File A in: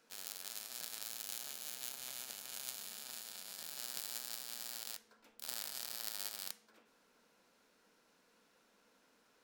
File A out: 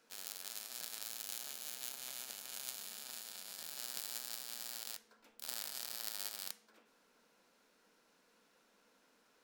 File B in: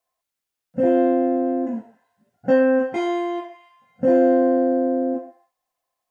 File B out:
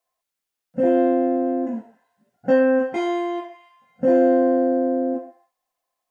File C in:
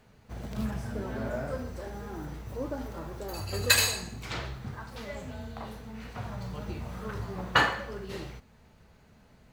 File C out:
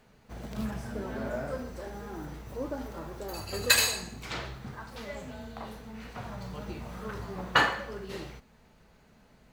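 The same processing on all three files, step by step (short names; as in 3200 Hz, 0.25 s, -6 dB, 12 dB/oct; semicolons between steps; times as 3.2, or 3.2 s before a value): bell 90 Hz -8.5 dB 0.85 oct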